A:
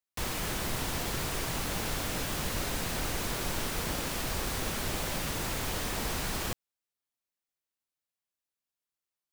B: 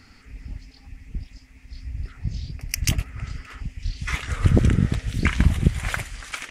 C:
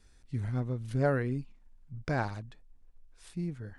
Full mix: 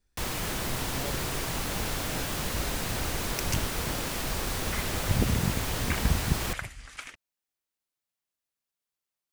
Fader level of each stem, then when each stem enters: +1.5, -9.0, -13.5 dB; 0.00, 0.65, 0.00 s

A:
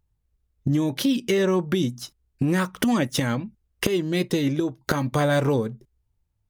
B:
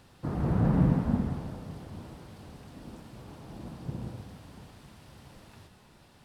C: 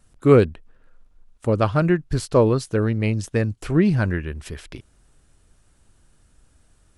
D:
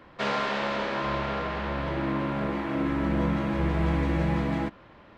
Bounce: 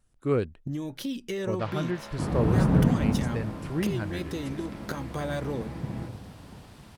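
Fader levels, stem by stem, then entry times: -11.0, +2.5, -12.0, -15.0 dB; 0.00, 1.95, 0.00, 1.40 s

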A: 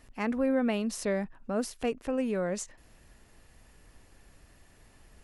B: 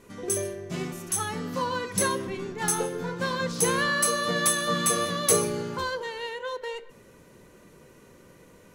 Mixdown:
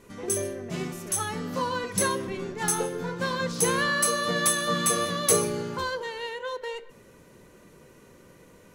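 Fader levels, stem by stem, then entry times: -16.0, 0.0 dB; 0.00, 0.00 s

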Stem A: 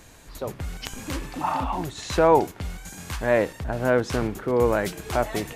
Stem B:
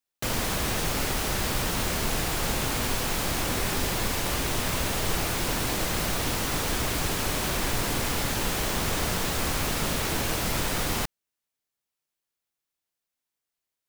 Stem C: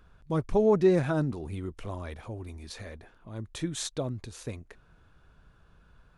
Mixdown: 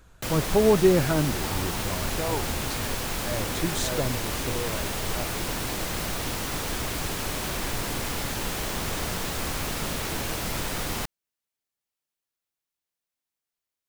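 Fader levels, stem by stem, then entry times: -14.0, -2.5, +3.0 dB; 0.00, 0.00, 0.00 s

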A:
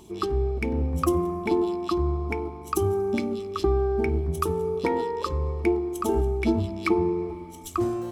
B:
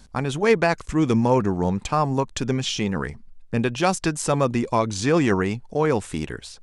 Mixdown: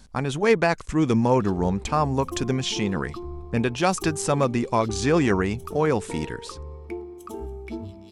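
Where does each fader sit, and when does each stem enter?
-11.0, -1.0 dB; 1.25, 0.00 s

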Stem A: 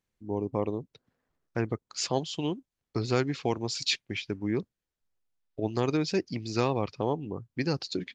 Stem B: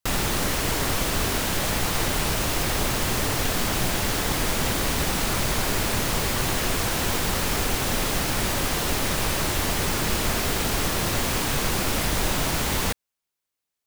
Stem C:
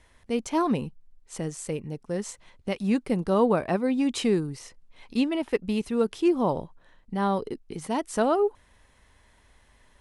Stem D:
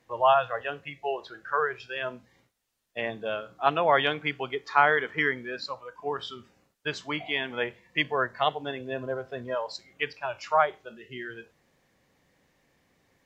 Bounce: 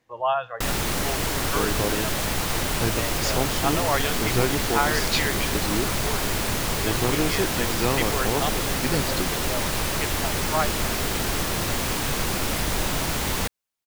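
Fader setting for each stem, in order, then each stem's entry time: +2.0 dB, -1.0 dB, off, -3.0 dB; 1.25 s, 0.55 s, off, 0.00 s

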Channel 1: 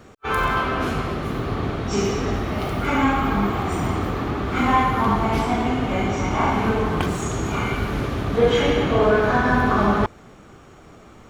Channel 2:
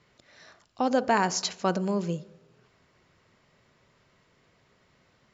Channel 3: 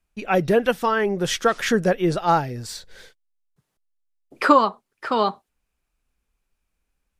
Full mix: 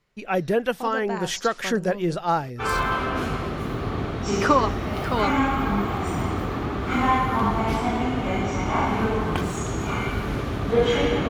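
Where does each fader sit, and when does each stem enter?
-2.5, -8.5, -4.0 dB; 2.35, 0.00, 0.00 s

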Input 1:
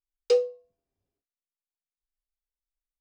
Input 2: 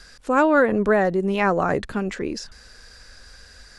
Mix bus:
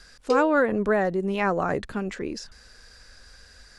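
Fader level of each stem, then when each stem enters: -3.0, -4.0 dB; 0.00, 0.00 s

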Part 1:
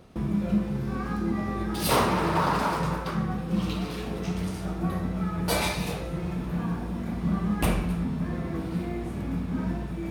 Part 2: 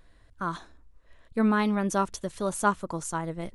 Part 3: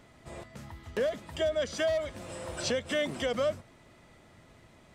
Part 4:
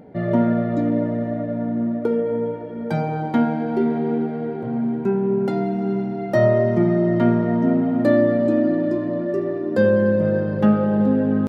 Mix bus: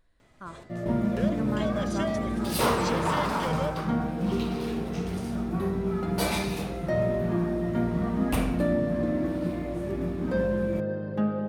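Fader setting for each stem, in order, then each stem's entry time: -2.5, -10.5, -4.0, -10.5 dB; 0.70, 0.00, 0.20, 0.55 s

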